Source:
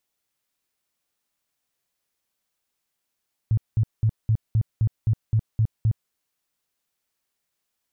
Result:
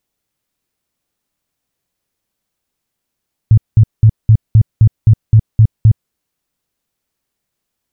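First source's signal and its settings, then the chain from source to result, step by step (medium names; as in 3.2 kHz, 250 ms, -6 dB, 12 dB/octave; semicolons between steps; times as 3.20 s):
tone bursts 110 Hz, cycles 7, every 0.26 s, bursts 10, -16 dBFS
bass shelf 450 Hz +10 dB; in parallel at +1 dB: level held to a coarse grid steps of 15 dB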